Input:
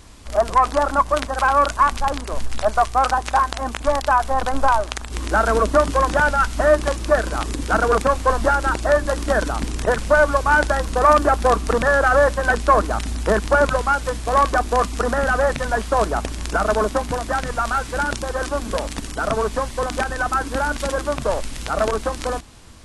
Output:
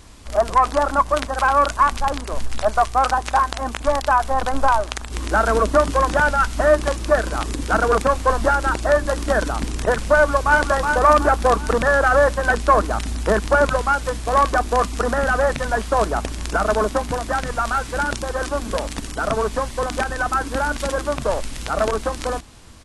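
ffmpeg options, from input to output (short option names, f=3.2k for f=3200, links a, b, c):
-filter_complex "[0:a]asplit=2[a][b];[b]afade=t=in:st=10.15:d=0.01,afade=t=out:st=10.58:d=0.01,aecho=0:1:370|740|1110|1480|1850:0.562341|0.224937|0.0899746|0.0359898|0.0143959[c];[a][c]amix=inputs=2:normalize=0"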